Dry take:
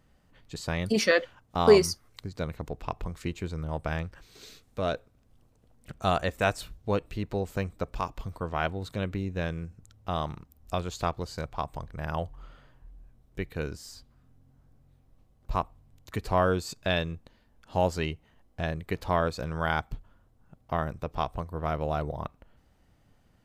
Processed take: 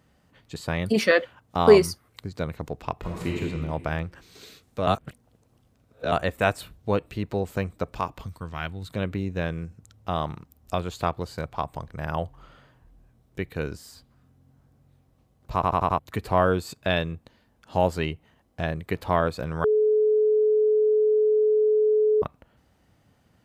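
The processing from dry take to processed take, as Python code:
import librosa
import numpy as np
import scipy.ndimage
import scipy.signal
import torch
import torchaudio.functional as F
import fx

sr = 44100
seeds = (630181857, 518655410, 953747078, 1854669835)

y = fx.reverb_throw(x, sr, start_s=2.99, length_s=0.42, rt60_s=1.6, drr_db=-3.0)
y = fx.peak_eq(y, sr, hz=570.0, db=-12.5, octaves=2.4, at=(8.26, 8.9))
y = fx.edit(y, sr, fx.reverse_span(start_s=4.87, length_s=1.25),
    fx.stutter_over(start_s=15.54, slice_s=0.09, count=5),
    fx.bleep(start_s=19.64, length_s=2.58, hz=428.0, db=-20.5), tone=tone)
y = scipy.signal.sosfilt(scipy.signal.butter(2, 72.0, 'highpass', fs=sr, output='sos'), y)
y = fx.dynamic_eq(y, sr, hz=5900.0, q=1.5, threshold_db=-56.0, ratio=4.0, max_db=-8)
y = F.gain(torch.from_numpy(y), 3.5).numpy()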